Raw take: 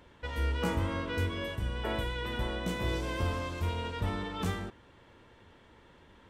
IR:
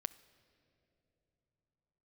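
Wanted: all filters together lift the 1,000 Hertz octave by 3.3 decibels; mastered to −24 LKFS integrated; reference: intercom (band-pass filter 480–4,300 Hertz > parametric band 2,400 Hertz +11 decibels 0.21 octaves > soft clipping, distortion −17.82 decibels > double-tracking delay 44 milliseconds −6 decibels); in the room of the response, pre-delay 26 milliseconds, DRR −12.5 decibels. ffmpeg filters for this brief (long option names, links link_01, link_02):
-filter_complex "[0:a]equalizer=frequency=1000:width_type=o:gain=4,asplit=2[link_01][link_02];[1:a]atrim=start_sample=2205,adelay=26[link_03];[link_02][link_03]afir=irnorm=-1:irlink=0,volume=15dB[link_04];[link_01][link_04]amix=inputs=2:normalize=0,highpass=480,lowpass=4300,equalizer=frequency=2400:width_type=o:width=0.21:gain=11,asoftclip=threshold=-15.5dB,asplit=2[link_05][link_06];[link_06]adelay=44,volume=-6dB[link_07];[link_05][link_07]amix=inputs=2:normalize=0,volume=-1dB"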